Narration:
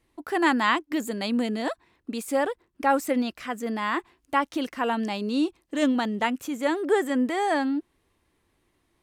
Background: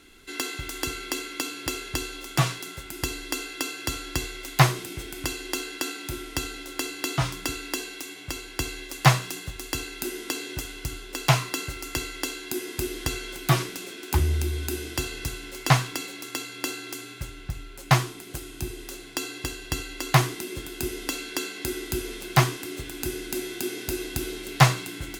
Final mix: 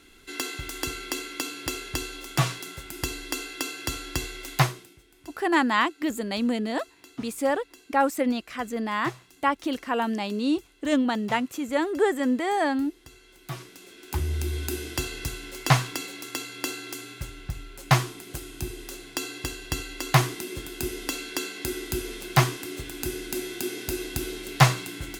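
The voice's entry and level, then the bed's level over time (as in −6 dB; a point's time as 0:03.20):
5.10 s, 0.0 dB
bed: 0:04.55 −1 dB
0:05.02 −21.5 dB
0:13.06 −21.5 dB
0:14.55 −0.5 dB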